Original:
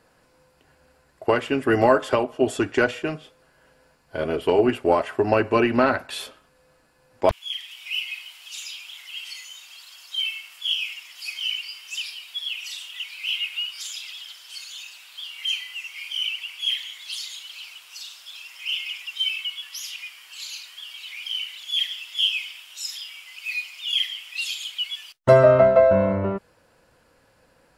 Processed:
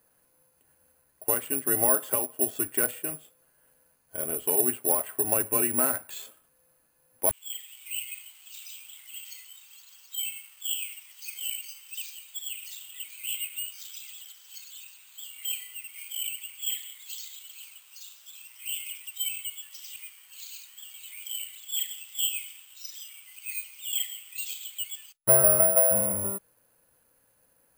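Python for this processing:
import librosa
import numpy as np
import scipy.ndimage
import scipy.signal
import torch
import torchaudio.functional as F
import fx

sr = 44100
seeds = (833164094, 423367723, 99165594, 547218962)

y = (np.kron(scipy.signal.resample_poly(x, 1, 4), np.eye(4)[0]) * 4)[:len(x)]
y = F.gain(torch.from_numpy(y), -12.0).numpy()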